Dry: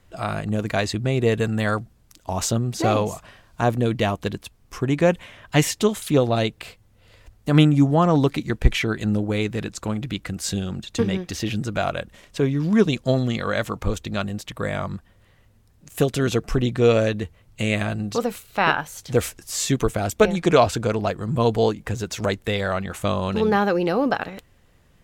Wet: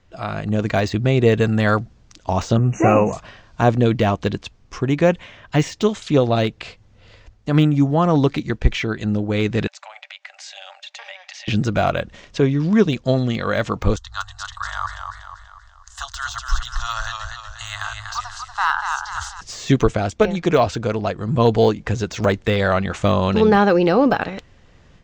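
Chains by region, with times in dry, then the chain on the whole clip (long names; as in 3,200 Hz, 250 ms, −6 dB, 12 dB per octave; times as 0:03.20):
0:02.57–0:03.13: running median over 5 samples + linear-phase brick-wall band-stop 2,900–5,800 Hz + double-tracking delay 15 ms −7.5 dB
0:09.67–0:11.48: Chebyshev high-pass with heavy ripple 570 Hz, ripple 9 dB + downward compressor, threshold −41 dBFS
0:13.96–0:19.41: inverse Chebyshev band-stop filter 140–490 Hz, stop band 50 dB + phaser with its sweep stopped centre 980 Hz, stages 4 + feedback echo with a swinging delay time 241 ms, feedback 48%, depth 68 cents, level −6 dB
whole clip: automatic gain control gain up to 10 dB; Butterworth low-pass 6,800 Hz 36 dB per octave; de-essing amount 60%; level −1 dB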